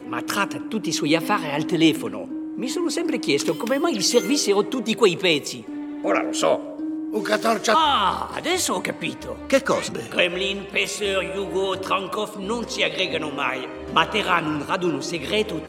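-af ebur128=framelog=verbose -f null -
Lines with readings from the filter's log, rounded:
Integrated loudness:
  I:         -22.5 LUFS
  Threshold: -32.5 LUFS
Loudness range:
  LRA:         2.6 LU
  Threshold: -42.4 LUFS
  LRA low:   -23.8 LUFS
  LRA high:  -21.1 LUFS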